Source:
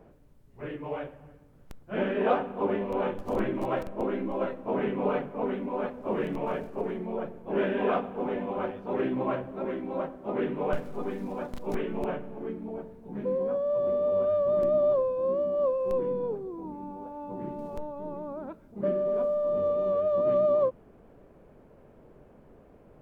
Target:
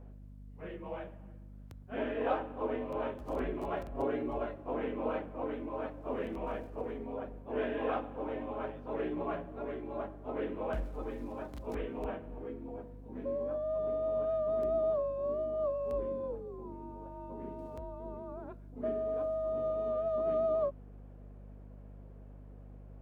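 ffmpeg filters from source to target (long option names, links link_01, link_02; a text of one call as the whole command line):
ffmpeg -i in.wav -filter_complex "[0:a]afreqshift=46,aeval=exprs='val(0)+0.00794*(sin(2*PI*50*n/s)+sin(2*PI*2*50*n/s)/2+sin(2*PI*3*50*n/s)/3+sin(2*PI*4*50*n/s)/4+sin(2*PI*5*50*n/s)/5)':channel_layout=same,asettb=1/sr,asplit=3[link_01][link_02][link_03];[link_01]atrim=end=3.944[link_04];[link_02]atrim=start=3.94:end=4.38,asetpts=PTS-STARTPTS,afade=type=in:duration=0.004:curve=qsin,afade=type=out:start_time=0.436:duration=0.004:curve=qsin,aecho=1:1:7.3:1,atrim=end_sample=19404[link_05];[link_03]atrim=start=4.376[link_06];[link_04][link_05]acrossfade=duration=0.004:curve1=hsin:curve2=qsin[link_07];[link_07][link_06]acrossfade=duration=0.004:curve1=qsin:curve2=hsin,volume=-7dB" out.wav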